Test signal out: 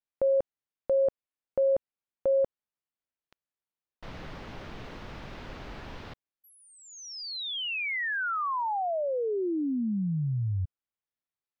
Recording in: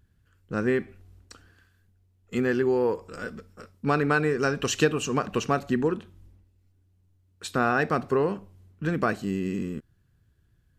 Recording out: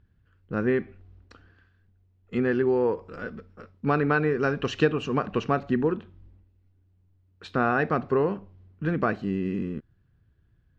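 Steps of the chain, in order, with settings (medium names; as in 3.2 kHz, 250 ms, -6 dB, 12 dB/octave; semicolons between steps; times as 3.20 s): distance through air 250 m; trim +1 dB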